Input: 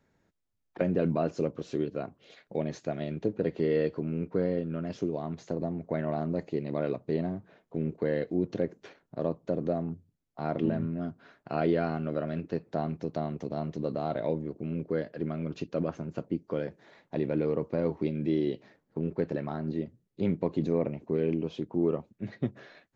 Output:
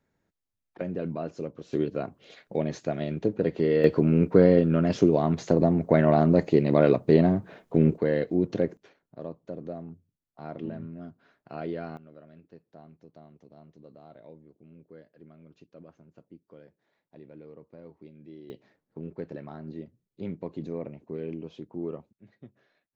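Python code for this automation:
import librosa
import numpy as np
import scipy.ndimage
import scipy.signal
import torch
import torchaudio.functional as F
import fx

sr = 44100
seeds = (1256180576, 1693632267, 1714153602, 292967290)

y = fx.gain(x, sr, db=fx.steps((0.0, -5.0), (1.73, 3.5), (3.84, 11.0), (7.98, 4.0), (8.77, -7.5), (11.97, -19.0), (18.5, -7.0), (22.13, -18.0)))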